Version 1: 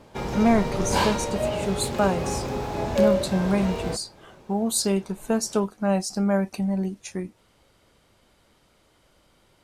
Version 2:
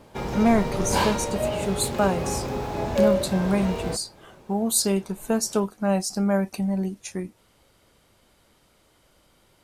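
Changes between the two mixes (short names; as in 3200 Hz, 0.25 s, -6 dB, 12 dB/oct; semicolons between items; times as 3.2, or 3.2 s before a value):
background: add high shelf 5800 Hz -5.5 dB; master: add high shelf 12000 Hz +11 dB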